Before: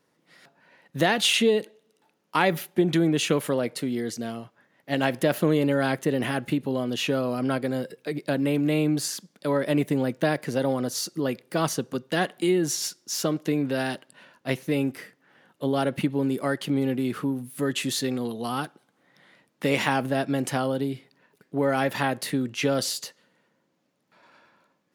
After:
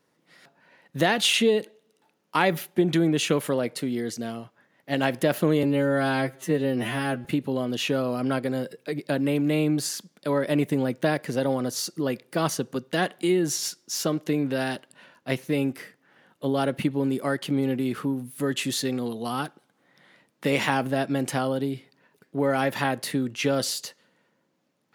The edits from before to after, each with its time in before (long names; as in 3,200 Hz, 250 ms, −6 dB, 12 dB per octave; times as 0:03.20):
0:05.63–0:06.44: time-stretch 2×